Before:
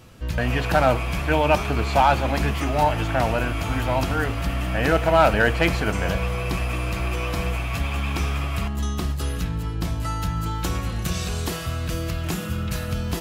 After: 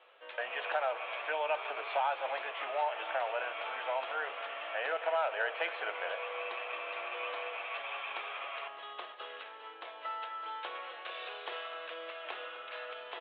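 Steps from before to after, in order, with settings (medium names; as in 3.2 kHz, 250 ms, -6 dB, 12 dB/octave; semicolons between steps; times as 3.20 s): steep low-pass 3.6 kHz 72 dB/octave; compression 5:1, threshold -21 dBFS, peak gain reduction 9.5 dB; steep high-pass 490 Hz 36 dB/octave; on a send: delay 254 ms -15 dB; on the sum: trim -6.5 dB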